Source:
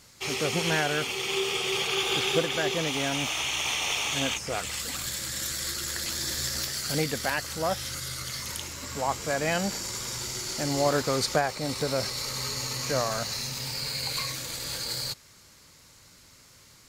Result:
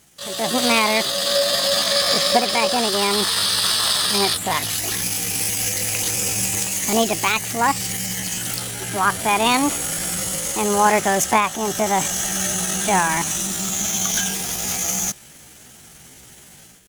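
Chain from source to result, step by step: level rider gain up to 10.5 dB; pitch shift +6.5 st

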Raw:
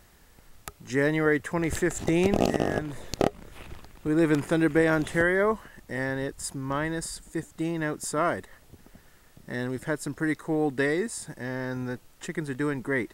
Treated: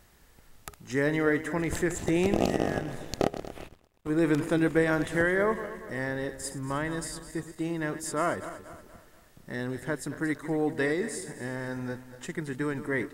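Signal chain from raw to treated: backward echo that repeats 118 ms, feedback 65%, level -12 dB; 3.68–4.10 s: power-law waveshaper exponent 2; trim -2.5 dB

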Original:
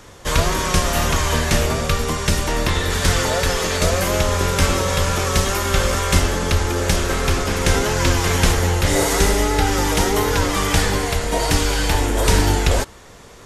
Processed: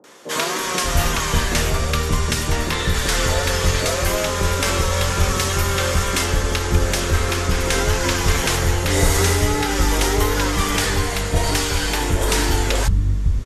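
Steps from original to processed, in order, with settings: three bands offset in time mids, highs, lows 40/590 ms, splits 210/680 Hz

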